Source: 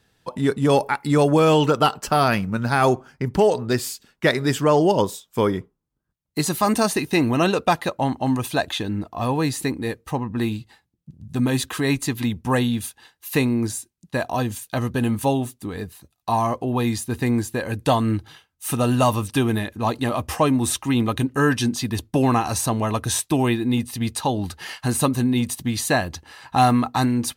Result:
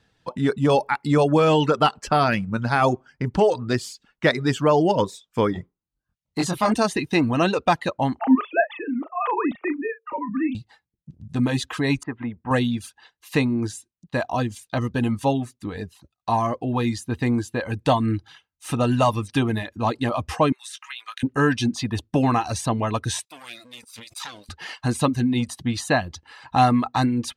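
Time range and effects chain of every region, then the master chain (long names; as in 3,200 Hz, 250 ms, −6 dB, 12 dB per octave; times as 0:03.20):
0:05.53–0:06.72: double-tracking delay 23 ms −3 dB + saturating transformer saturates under 730 Hz
0:08.19–0:10.55: three sine waves on the formant tracks + parametric band 1,200 Hz +9.5 dB 0.2 octaves + double-tracking delay 38 ms −9 dB
0:12.03–0:12.51: low-pass filter 1,900 Hz 24 dB per octave + low-shelf EQ 250 Hz −10 dB
0:20.52–0:21.23: high-pass filter 1,400 Hz 24 dB per octave + double-tracking delay 18 ms −10 dB + downward compressor 4 to 1, threshold −29 dBFS
0:23.25–0:24.49: lower of the sound and its delayed copy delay 0.82 ms + first difference + level that may fall only so fast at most 77 dB per second
whole clip: reverb reduction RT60 0.51 s; Bessel low-pass filter 5,500 Hz, order 2; notch filter 390 Hz, Q 13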